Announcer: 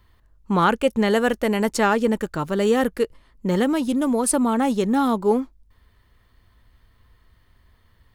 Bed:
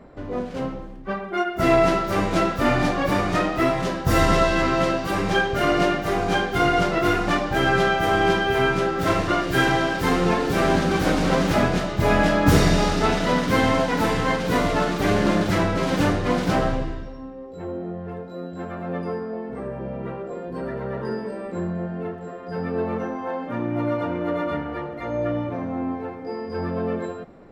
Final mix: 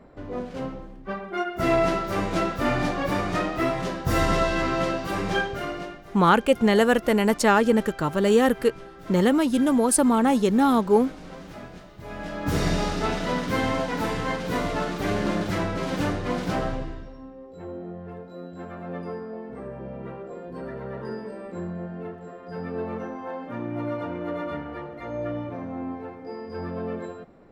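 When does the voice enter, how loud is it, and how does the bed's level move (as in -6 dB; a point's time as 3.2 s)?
5.65 s, +0.5 dB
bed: 5.4 s -4 dB
6.06 s -21 dB
12.03 s -21 dB
12.68 s -5.5 dB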